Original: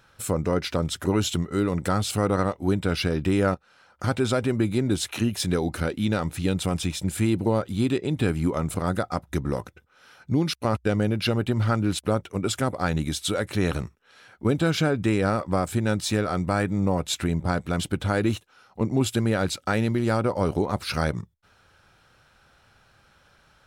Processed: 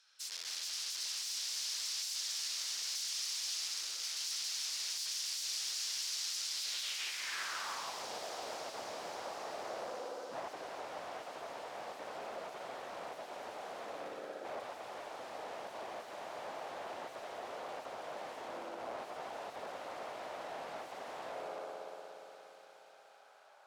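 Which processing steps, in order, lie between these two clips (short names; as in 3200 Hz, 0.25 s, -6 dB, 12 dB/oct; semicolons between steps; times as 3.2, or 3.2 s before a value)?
HPF 490 Hz 12 dB/oct; limiter -21.5 dBFS, peak gain reduction 11 dB; spring tank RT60 3.4 s, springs 59 ms, chirp 35 ms, DRR -3 dB; wrapped overs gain 31 dB; band-pass sweep 5200 Hz -> 660 Hz, 6.53–8.09; on a send: thin delay 0.273 s, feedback 84%, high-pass 3600 Hz, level -6 dB; on the sum: gain +2.5 dB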